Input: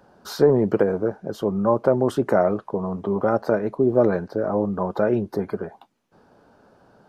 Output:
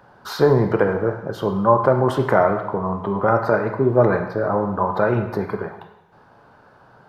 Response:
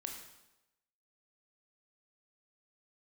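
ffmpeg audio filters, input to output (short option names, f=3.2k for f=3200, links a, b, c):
-filter_complex "[0:a]asplit=2[a][b];[b]equalizer=f=125:t=o:w=1:g=11,equalizer=f=250:t=o:w=1:g=-9,equalizer=f=1k:t=o:w=1:g=10,equalizer=f=2k:t=o:w=1:g=8,equalizer=f=4k:t=o:w=1:g=5,equalizer=f=8k:t=o:w=1:g=-9[c];[1:a]atrim=start_sample=2205[d];[c][d]afir=irnorm=-1:irlink=0,volume=3.5dB[e];[a][e]amix=inputs=2:normalize=0,volume=-4.5dB"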